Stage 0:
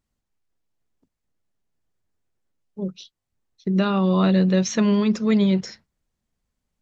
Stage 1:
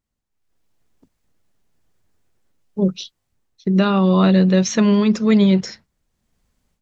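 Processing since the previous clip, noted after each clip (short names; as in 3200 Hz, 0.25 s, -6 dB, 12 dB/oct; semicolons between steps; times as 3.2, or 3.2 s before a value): AGC gain up to 15 dB; gain -3.5 dB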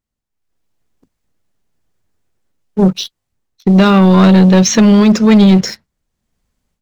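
sample leveller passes 2; gain +3 dB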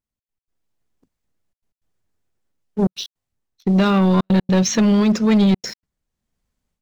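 step gate "xx.x.xxxxxxxxx" 157 bpm -60 dB; gain -7.5 dB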